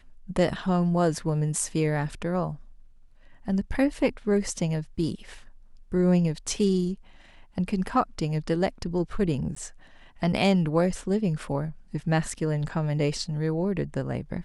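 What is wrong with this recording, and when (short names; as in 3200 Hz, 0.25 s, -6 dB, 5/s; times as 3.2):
9.55–9.56 gap 14 ms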